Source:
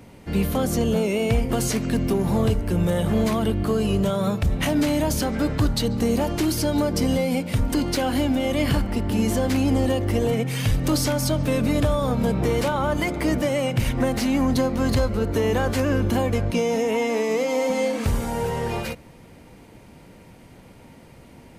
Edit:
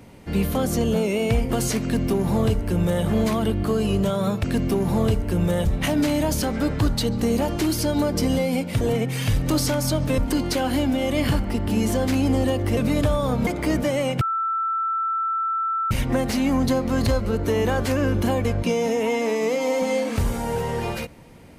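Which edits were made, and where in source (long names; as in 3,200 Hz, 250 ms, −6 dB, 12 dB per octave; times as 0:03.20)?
0:01.83–0:03.04: duplicate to 0:04.44
0:10.19–0:11.56: move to 0:07.60
0:12.26–0:13.05: remove
0:13.79: insert tone 1,330 Hz −21 dBFS 1.70 s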